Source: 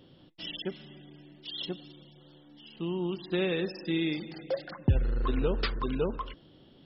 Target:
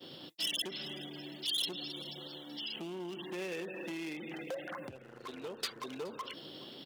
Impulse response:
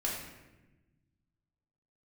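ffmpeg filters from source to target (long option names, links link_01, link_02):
-filter_complex "[0:a]acontrast=85,asettb=1/sr,asplit=3[link_01][link_02][link_03];[link_01]atrim=end=2.764[link_04];[link_02]atrim=start=2.76:end=5.19,asetpts=PTS-STARTPTS,afade=type=in:duration=0.004:curve=qsin,afade=type=out:start_time=2.426:duration=0.004:curve=qsin,asuperstop=centerf=4800:order=8:qfactor=1.1[link_05];[link_03]atrim=start=5.186[link_06];[link_04][link_05]acrossfade=duration=0.004:curve1=hsin:curve2=qsin[link_07];[link_07][link_06]acrossfade=duration=0.004:curve1=qsin:curve2=hsin,acompressor=threshold=-30dB:ratio=8,asoftclip=type=hard:threshold=-29.5dB,alimiter=level_in=15dB:limit=-24dB:level=0:latency=1:release=43,volume=-15dB,agate=range=-33dB:threshold=-46dB:ratio=3:detection=peak,highpass=frequency=110:width=0.5412,highpass=frequency=110:width=1.3066,bass=frequency=250:gain=-10,treble=frequency=4000:gain=15,aecho=1:1:421:0.0841,volume=5dB"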